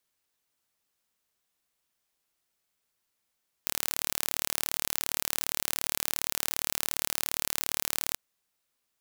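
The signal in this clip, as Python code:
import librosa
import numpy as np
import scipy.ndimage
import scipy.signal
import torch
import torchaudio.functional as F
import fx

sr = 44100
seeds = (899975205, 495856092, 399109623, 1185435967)

y = 10.0 ** (-2.0 / 20.0) * (np.mod(np.arange(round(4.49 * sr)), round(sr / 37.3)) == 0)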